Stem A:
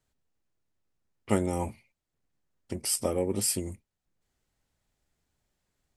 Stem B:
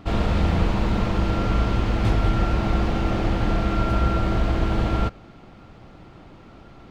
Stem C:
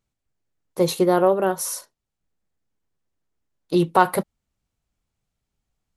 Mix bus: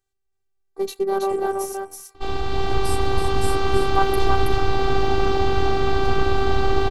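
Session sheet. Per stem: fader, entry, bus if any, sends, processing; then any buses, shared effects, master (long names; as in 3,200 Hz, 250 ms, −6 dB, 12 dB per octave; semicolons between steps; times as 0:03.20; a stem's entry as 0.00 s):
−0.5 dB, 0.00 s, no send, echo send −8.5 dB, downward compressor, threshold −30 dBFS, peak gain reduction 11 dB
−1.0 dB, 2.15 s, no send, echo send −5 dB, octave-band graphic EQ 125/1,000/2,000/4,000 Hz +6/+5/−4/+6 dB; automatic gain control gain up to 7 dB
−3.0 dB, 0.00 s, no send, echo send −3.5 dB, adaptive Wiener filter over 15 samples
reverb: not used
echo: single-tap delay 325 ms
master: phases set to zero 391 Hz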